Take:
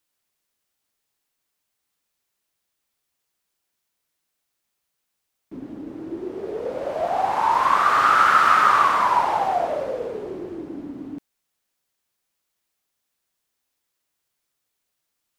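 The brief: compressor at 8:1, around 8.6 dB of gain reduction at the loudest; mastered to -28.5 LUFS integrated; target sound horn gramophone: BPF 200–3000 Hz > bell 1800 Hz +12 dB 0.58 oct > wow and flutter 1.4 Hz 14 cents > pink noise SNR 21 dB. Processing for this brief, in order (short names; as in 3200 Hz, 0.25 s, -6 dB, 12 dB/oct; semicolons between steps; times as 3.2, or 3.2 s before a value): compressor 8:1, threshold -21 dBFS; BPF 200–3000 Hz; bell 1800 Hz +12 dB 0.58 oct; wow and flutter 1.4 Hz 14 cents; pink noise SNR 21 dB; gain -4.5 dB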